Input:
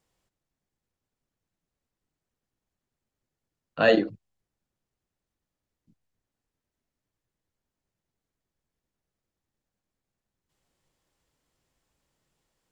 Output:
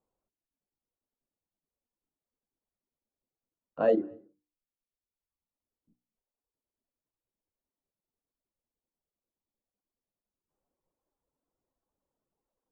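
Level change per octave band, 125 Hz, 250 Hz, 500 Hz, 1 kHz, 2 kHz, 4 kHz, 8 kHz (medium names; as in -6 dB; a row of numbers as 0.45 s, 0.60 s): -10.0 dB, -5.5 dB, -3.5 dB, -6.5 dB, -17.5 dB, under -20 dB, no reading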